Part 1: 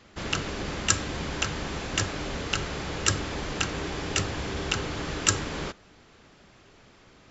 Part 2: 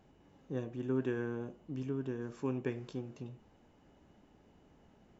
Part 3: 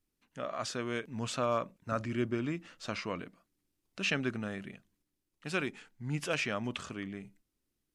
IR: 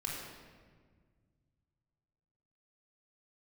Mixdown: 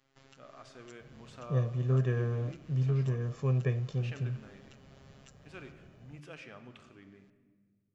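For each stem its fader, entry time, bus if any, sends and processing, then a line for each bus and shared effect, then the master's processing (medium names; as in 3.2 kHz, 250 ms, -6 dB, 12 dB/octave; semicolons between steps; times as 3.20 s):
-17.5 dB, 0.00 s, no send, compression 12:1, threshold -37 dBFS, peak gain reduction 21.5 dB; robot voice 135 Hz
0.0 dB, 1.00 s, no send, peaking EQ 130 Hz +12 dB 0.9 oct; comb 1.7 ms, depth 85%
-17.0 dB, 0.00 s, send -7 dB, low-pass 3.4 kHz 6 dB/octave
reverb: on, RT60 1.7 s, pre-delay 3 ms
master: none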